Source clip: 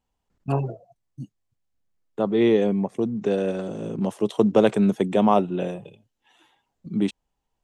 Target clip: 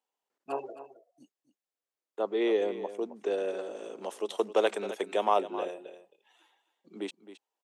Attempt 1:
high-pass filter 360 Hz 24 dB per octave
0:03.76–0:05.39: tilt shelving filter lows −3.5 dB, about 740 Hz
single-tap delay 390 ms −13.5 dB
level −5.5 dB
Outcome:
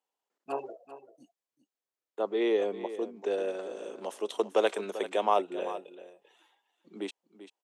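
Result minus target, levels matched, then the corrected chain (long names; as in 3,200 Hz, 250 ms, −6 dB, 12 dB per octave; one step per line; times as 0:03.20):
echo 124 ms late
high-pass filter 360 Hz 24 dB per octave
0:03.76–0:05.39: tilt shelving filter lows −3.5 dB, about 740 Hz
single-tap delay 266 ms −13.5 dB
level −5.5 dB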